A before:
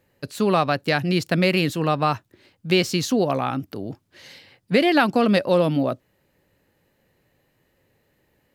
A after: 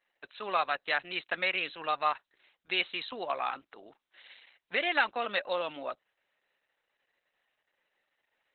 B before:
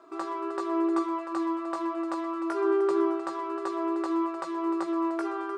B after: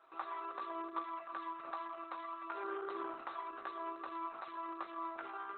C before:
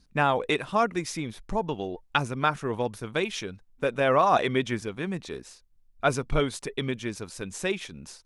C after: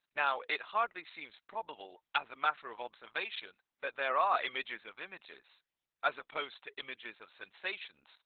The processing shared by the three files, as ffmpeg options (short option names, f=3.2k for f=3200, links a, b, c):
-af "highpass=930,volume=-4dB" -ar 48000 -c:a libopus -b:a 8k